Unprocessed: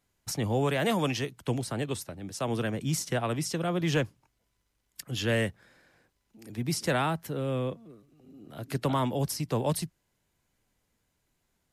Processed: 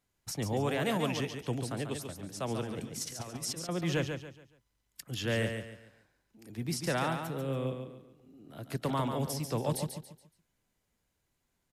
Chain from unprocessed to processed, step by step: 2.63–3.69 negative-ratio compressor -35 dBFS, ratio -0.5; on a send: feedback echo 0.141 s, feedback 33%, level -6.5 dB; on the sum: gain -4.5 dB

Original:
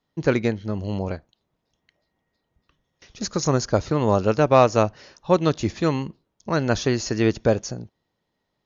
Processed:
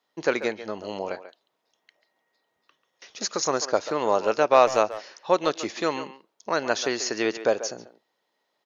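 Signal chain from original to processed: HPF 480 Hz 12 dB/oct; in parallel at -2.5 dB: compressor 5:1, threshold -33 dBFS, peak gain reduction 19.5 dB; on the sum: speakerphone echo 0.14 s, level -12 dB; gain -1 dB

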